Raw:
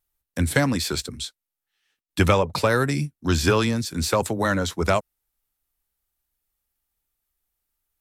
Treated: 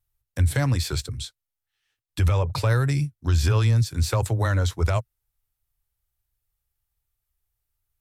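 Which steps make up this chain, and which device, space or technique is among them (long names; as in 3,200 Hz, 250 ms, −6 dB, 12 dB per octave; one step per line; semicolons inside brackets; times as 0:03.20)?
car stereo with a boomy subwoofer (low shelf with overshoot 150 Hz +8.5 dB, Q 3; brickwall limiter −9.5 dBFS, peak gain reduction 11 dB)
level −3.5 dB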